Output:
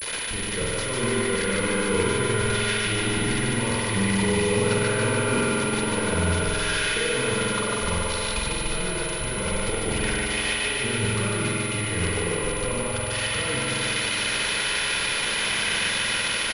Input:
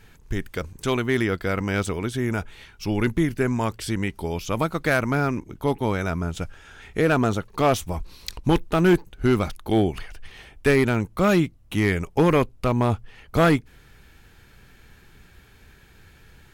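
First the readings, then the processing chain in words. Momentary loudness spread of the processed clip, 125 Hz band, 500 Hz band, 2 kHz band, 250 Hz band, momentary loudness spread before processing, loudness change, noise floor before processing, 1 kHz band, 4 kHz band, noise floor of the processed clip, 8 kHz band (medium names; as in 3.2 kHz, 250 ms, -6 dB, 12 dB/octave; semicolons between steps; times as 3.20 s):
4 LU, -2.5 dB, -2.0 dB, +5.0 dB, -4.5 dB, 11 LU, 0.0 dB, -52 dBFS, -1.0 dB, +11.5 dB, -28 dBFS, +14.5 dB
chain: zero-crossing glitches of -16.5 dBFS; expander -25 dBFS; peaking EQ 2.4 kHz +8.5 dB 2.2 oct; comb 2 ms, depth 50%; waveshaping leveller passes 5; peak limiter -18 dBFS, peak gain reduction 16 dB; compressor with a negative ratio -25 dBFS, ratio -0.5; small resonant body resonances 210/470 Hz, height 8 dB, ringing for 45 ms; on a send: thinning echo 148 ms, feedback 78%, high-pass 180 Hz, level -3 dB; on the sum: spring tank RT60 2.2 s, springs 46 ms, chirp 45 ms, DRR -3.5 dB; class-D stage that switches slowly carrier 10 kHz; trim -5 dB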